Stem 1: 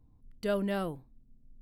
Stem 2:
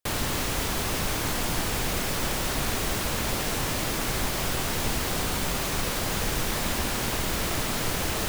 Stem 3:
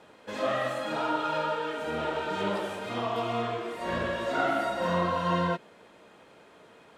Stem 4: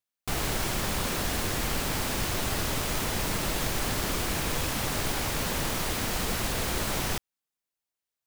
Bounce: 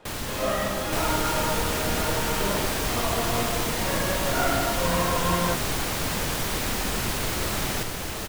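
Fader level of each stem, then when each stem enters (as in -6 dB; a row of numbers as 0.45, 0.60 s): -5.5, -4.0, +1.0, +0.5 dB; 0.00, 0.00, 0.00, 0.65 s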